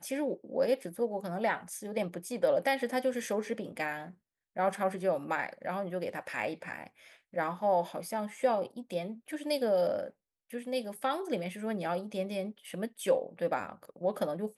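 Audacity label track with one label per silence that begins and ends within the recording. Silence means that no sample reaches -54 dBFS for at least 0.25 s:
4.140000	4.560000	silence
10.100000	10.500000	silence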